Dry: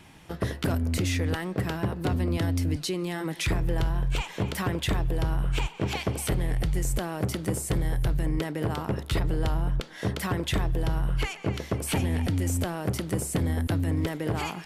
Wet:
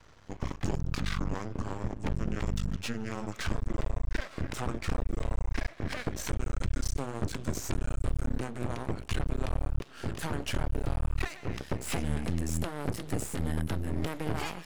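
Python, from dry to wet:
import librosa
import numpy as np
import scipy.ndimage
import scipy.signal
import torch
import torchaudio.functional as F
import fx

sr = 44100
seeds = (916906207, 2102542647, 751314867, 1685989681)

y = fx.pitch_glide(x, sr, semitones=-10.0, runs='ending unshifted')
y = np.maximum(y, 0.0)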